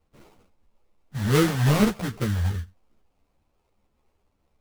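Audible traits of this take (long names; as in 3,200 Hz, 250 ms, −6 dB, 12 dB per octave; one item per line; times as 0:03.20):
phaser sweep stages 4, 2.4 Hz, lowest notch 320–1,000 Hz
aliases and images of a low sample rate 1,700 Hz, jitter 20%
a shimmering, thickened sound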